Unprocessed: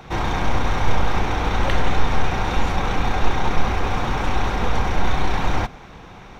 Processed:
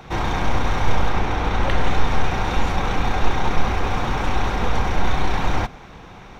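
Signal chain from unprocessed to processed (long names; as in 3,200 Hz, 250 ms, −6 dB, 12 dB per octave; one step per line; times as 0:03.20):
0:01.09–0:01.81: high-shelf EQ 4,900 Hz −5 dB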